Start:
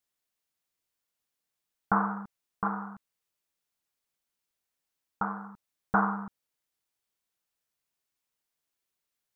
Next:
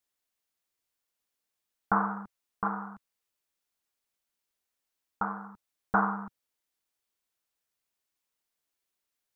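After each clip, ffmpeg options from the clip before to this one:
-af "equalizer=f=140:w=2.5:g=-7.5"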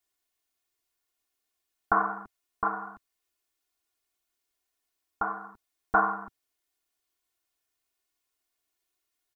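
-af "aecho=1:1:2.8:0.88"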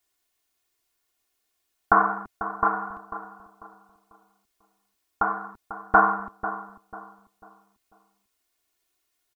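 -filter_complex "[0:a]asplit=2[s0][s1];[s1]adelay=494,lowpass=f=1300:p=1,volume=0.282,asplit=2[s2][s3];[s3]adelay=494,lowpass=f=1300:p=1,volume=0.37,asplit=2[s4][s5];[s5]adelay=494,lowpass=f=1300:p=1,volume=0.37,asplit=2[s6][s7];[s7]adelay=494,lowpass=f=1300:p=1,volume=0.37[s8];[s0][s2][s4][s6][s8]amix=inputs=5:normalize=0,volume=2"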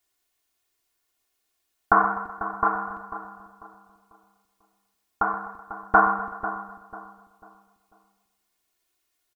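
-af "aecho=1:1:126|252|378|504|630|756:0.188|0.109|0.0634|0.0368|0.0213|0.0124"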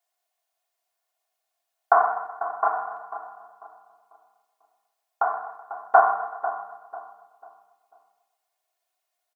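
-af "highpass=f=680:t=q:w=4.9,volume=0.501"

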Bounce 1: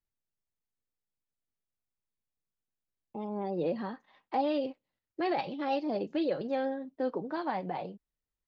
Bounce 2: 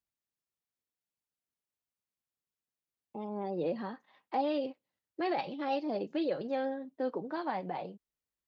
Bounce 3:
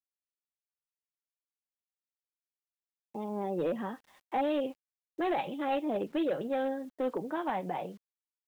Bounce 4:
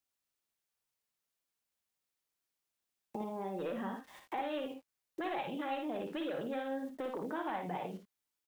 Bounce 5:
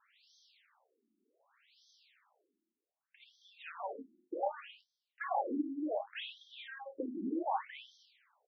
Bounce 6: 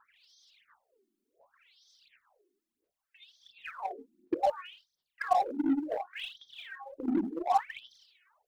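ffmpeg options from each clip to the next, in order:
-af "highpass=f=120:p=1,volume=0.841"
-af "aresample=8000,volume=23.7,asoftclip=hard,volume=0.0422,aresample=44100,acrusher=bits=10:mix=0:aa=0.000001,volume=1.33"
-filter_complex "[0:a]acrossover=split=870[s0][s1];[s0]alimiter=level_in=2.66:limit=0.0631:level=0:latency=1,volume=0.376[s2];[s2][s1]amix=inputs=2:normalize=0,acompressor=threshold=0.00398:ratio=2.5,aecho=1:1:56|78:0.501|0.299,volume=2.11"
-filter_complex "[0:a]areverse,acompressor=mode=upward:threshold=0.00501:ratio=2.5,areverse,asplit=2[s0][s1];[s1]adelay=31,volume=0.316[s2];[s0][s2]amix=inputs=2:normalize=0,afftfilt=real='re*between(b*sr/1024,260*pow(4500/260,0.5+0.5*sin(2*PI*0.66*pts/sr))/1.41,260*pow(4500/260,0.5+0.5*sin(2*PI*0.66*pts/sr))*1.41)':imag='im*between(b*sr/1024,260*pow(4500/260,0.5+0.5*sin(2*PI*0.66*pts/sr))/1.41,260*pow(4500/260,0.5+0.5*sin(2*PI*0.66*pts/sr))*1.41)':win_size=1024:overlap=0.75,volume=2"
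-filter_complex "[0:a]aphaser=in_gain=1:out_gain=1:delay=2.8:decay=0.77:speed=1.4:type=sinusoidal,asplit=2[s0][s1];[s1]acrusher=bits=4:mix=0:aa=0.5,volume=0.355[s2];[s0][s2]amix=inputs=2:normalize=0"

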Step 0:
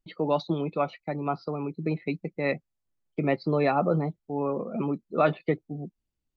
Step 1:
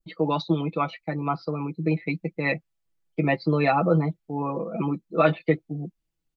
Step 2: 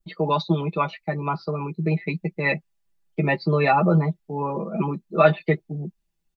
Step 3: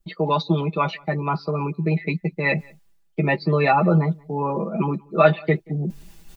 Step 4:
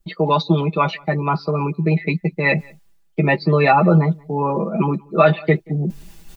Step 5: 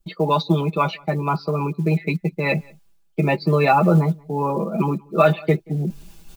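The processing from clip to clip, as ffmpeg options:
-af "aecho=1:1:6.1:0.82,adynamicequalizer=threshold=0.0126:dfrequency=2500:dqfactor=0.82:tfrequency=2500:tqfactor=0.82:attack=5:release=100:ratio=0.375:range=2:mode=boostabove:tftype=bell"
-af "aecho=1:1:5:0.63,volume=1.19"
-filter_complex "[0:a]areverse,acompressor=mode=upward:threshold=0.1:ratio=2.5,areverse,asplit=2[s0][s1];[s1]adelay=180.8,volume=0.0447,highshelf=f=4000:g=-4.07[s2];[s0][s2]amix=inputs=2:normalize=0,volume=1.12"
-af "alimiter=level_in=1.78:limit=0.891:release=50:level=0:latency=1,volume=0.891"
-af "bandreject=f=1900:w=6,acrusher=bits=9:mode=log:mix=0:aa=0.000001,volume=0.794"

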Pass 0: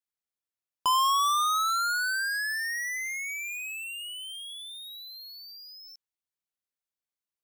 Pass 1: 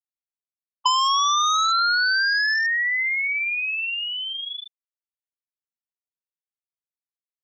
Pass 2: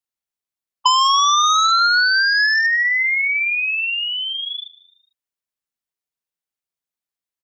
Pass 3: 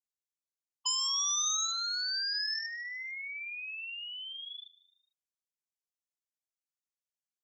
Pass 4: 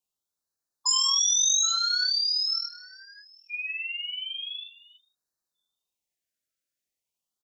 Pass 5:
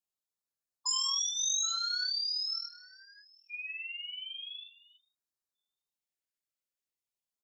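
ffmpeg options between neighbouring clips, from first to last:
-af "afftfilt=real='re*gte(hypot(re,im),0.112)':imag='im*gte(hypot(re,im),0.112)':win_size=1024:overlap=0.75,equalizer=f=8000:t=o:w=1.9:g=11.5,acompressor=threshold=0.0447:ratio=6,volume=2.82"
-filter_complex "[0:a]asplit=4[s0][s1][s2][s3];[s1]adelay=150,afreqshift=76,volume=0.1[s4];[s2]adelay=300,afreqshift=152,volume=0.0462[s5];[s3]adelay=450,afreqshift=228,volume=0.0211[s6];[s0][s4][s5][s6]amix=inputs=4:normalize=0,volume=1.78"
-af "bandpass=f=6600:t=q:w=2.3:csg=0,volume=0.562"
-filter_complex "[0:a]asplit=2[s0][s1];[s1]adelay=23,volume=0.562[s2];[s0][s2]amix=inputs=2:normalize=0,asplit=2[s3][s4];[s4]adelay=816.3,volume=0.178,highshelf=f=4000:g=-18.4[s5];[s3][s5]amix=inputs=2:normalize=0,afftfilt=real='re*(1-between(b*sr/1024,910*pow(2700/910,0.5+0.5*sin(2*PI*0.42*pts/sr))/1.41,910*pow(2700/910,0.5+0.5*sin(2*PI*0.42*pts/sr))*1.41))':imag='im*(1-between(b*sr/1024,910*pow(2700/910,0.5+0.5*sin(2*PI*0.42*pts/sr))/1.41,910*pow(2700/910,0.5+0.5*sin(2*PI*0.42*pts/sr))*1.41))':win_size=1024:overlap=0.75,volume=2.11"
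-af "bandreject=f=5900:w=24,volume=0.422"

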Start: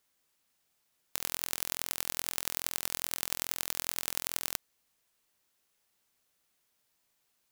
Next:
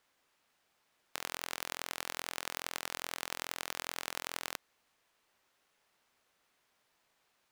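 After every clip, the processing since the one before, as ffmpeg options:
-filter_complex "[0:a]acrusher=bits=2:mode=log:mix=0:aa=0.000001,asplit=2[s0][s1];[s1]highpass=f=720:p=1,volume=2.51,asoftclip=type=tanh:threshold=0.668[s2];[s0][s2]amix=inputs=2:normalize=0,lowpass=f=1500:p=1,volume=0.501,volume=2"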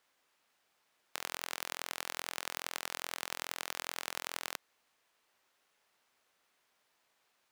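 -af "lowshelf=f=190:g=-7.5"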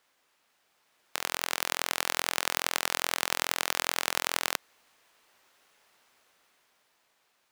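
-af "dynaudnorm=f=200:g=13:m=2,volume=1.68"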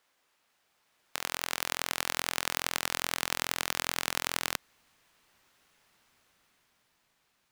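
-af "asubboost=boost=3.5:cutoff=240,volume=0.794"

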